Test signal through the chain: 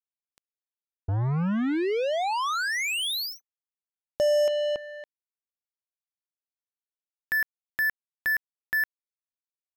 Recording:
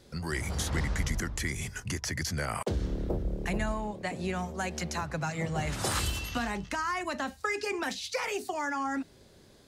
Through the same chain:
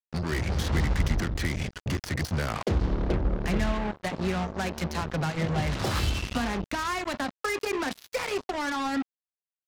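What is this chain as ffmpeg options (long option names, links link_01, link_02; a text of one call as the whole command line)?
ffmpeg -i in.wav -af "lowpass=frequency=5200:width=0.5412,lowpass=frequency=5200:width=1.3066,lowshelf=frequency=480:gain=6,acrusher=bits=4:mix=0:aa=0.5" out.wav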